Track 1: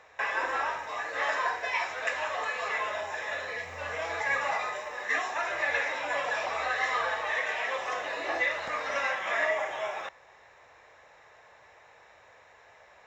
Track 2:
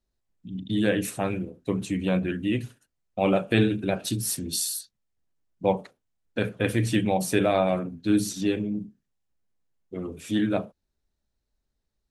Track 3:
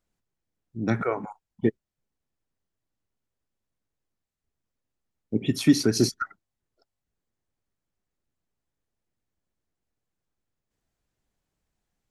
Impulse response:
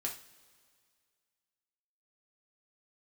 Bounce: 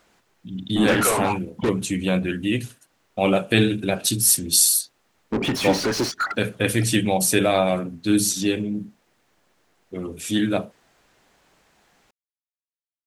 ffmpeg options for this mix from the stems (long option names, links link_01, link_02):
-filter_complex "[1:a]highshelf=frequency=3300:gain=11,volume=2.5dB[link_01];[2:a]acompressor=threshold=-23dB:ratio=4,asplit=2[link_02][link_03];[link_03]highpass=frequency=720:poles=1,volume=32dB,asoftclip=type=tanh:threshold=-18.5dB[link_04];[link_02][link_04]amix=inputs=2:normalize=0,lowpass=frequency=2600:poles=1,volume=-6dB,volume=3dB[link_05];[link_01][link_05]amix=inputs=2:normalize=0"